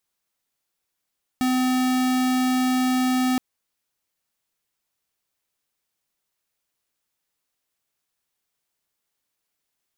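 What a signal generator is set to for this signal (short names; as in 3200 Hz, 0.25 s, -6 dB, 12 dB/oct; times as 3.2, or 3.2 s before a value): tone square 255 Hz -21 dBFS 1.97 s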